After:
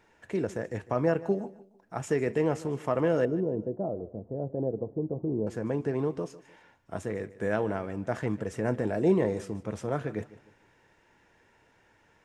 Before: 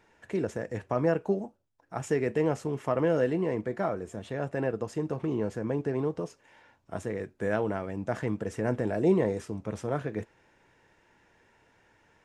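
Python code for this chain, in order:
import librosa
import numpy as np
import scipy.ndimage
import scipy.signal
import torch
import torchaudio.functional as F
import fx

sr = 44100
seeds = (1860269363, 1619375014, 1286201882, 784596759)

y = fx.cheby2_lowpass(x, sr, hz=2900.0, order=4, stop_db=70, at=(3.25, 5.47))
y = fx.echo_feedback(y, sr, ms=151, feedback_pct=34, wet_db=-18)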